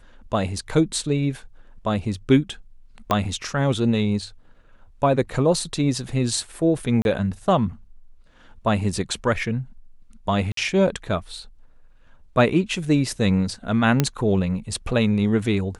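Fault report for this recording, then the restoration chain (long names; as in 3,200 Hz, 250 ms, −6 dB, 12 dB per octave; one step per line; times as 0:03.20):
0:03.11: click −7 dBFS
0:07.02–0:07.05: drop-out 31 ms
0:10.52–0:10.57: drop-out 53 ms
0:14.00: click −4 dBFS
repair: click removal
repair the gap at 0:07.02, 31 ms
repair the gap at 0:10.52, 53 ms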